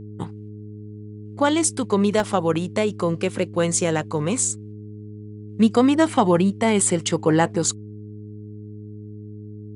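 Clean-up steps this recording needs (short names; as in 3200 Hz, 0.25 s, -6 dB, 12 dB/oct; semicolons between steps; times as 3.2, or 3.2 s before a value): de-hum 105.2 Hz, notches 4; interpolate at 2.2, 1.3 ms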